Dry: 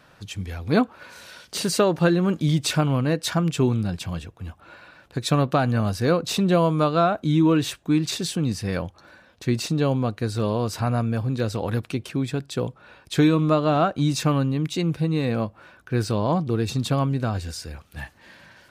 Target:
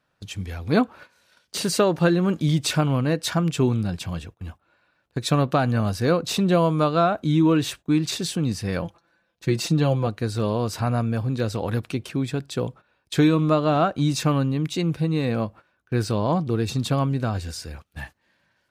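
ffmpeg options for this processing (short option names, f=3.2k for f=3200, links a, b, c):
-filter_complex "[0:a]agate=range=-18dB:threshold=-40dB:ratio=16:detection=peak,asettb=1/sr,asplit=3[a][b][c];[a]atrim=end=8.824[d];[b]atrim=start=8.82:end=10.07,asetpts=PTS-STARTPTS,afade=t=in:d=0.004:c=qsin,afade=t=out:st=1.246:d=0.004:c=qsin,aecho=1:1:5.9:0.61,atrim=end_sample=55125[e];[c]atrim=start=10.066[f];[d][e]acrossfade=d=0.004:c1=hsin:c2=qsin[g];[g][f]acrossfade=d=0.004:c1=qsin:c2=hsin"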